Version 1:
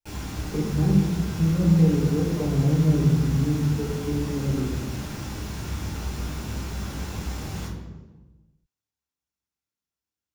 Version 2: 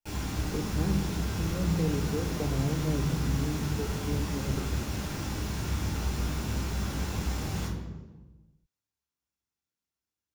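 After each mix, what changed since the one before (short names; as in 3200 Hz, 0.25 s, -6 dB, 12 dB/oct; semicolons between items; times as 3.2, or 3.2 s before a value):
speech: send -11.5 dB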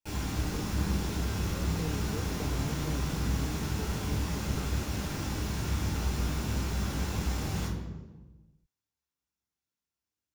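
speech -7.5 dB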